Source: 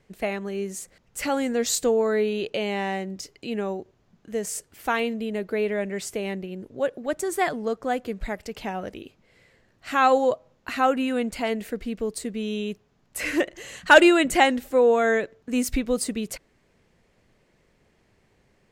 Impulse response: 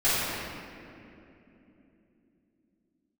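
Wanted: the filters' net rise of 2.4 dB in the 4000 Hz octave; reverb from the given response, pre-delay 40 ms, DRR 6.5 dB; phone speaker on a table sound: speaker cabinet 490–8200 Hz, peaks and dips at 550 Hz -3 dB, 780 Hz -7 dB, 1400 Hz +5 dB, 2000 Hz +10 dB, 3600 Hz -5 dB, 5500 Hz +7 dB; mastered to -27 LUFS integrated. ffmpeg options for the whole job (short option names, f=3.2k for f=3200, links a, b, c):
-filter_complex "[0:a]equalizer=f=4k:t=o:g=3.5,asplit=2[a][b];[1:a]atrim=start_sample=2205,adelay=40[c];[b][c]afir=irnorm=-1:irlink=0,volume=-22.5dB[d];[a][d]amix=inputs=2:normalize=0,highpass=f=490:w=0.5412,highpass=f=490:w=1.3066,equalizer=f=550:t=q:w=4:g=-3,equalizer=f=780:t=q:w=4:g=-7,equalizer=f=1.4k:t=q:w=4:g=5,equalizer=f=2k:t=q:w=4:g=10,equalizer=f=3.6k:t=q:w=4:g=-5,equalizer=f=5.5k:t=q:w=4:g=7,lowpass=f=8.2k:w=0.5412,lowpass=f=8.2k:w=1.3066,volume=-4dB"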